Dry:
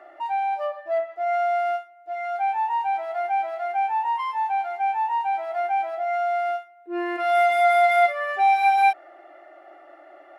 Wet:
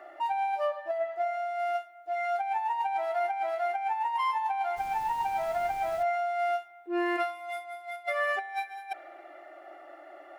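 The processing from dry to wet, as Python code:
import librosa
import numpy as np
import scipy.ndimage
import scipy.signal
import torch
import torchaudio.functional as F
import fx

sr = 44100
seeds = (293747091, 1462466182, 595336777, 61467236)

y = fx.high_shelf(x, sr, hz=5500.0, db=7.5)
y = fx.over_compress(y, sr, threshold_db=-25.0, ratio=-0.5)
y = fx.dmg_noise_colour(y, sr, seeds[0], colour='pink', level_db=-46.0, at=(4.76, 6.02), fade=0.02)
y = fx.rev_spring(y, sr, rt60_s=2.1, pass_ms=(33,), chirp_ms=40, drr_db=16.5)
y = y * 10.0 ** (-4.5 / 20.0)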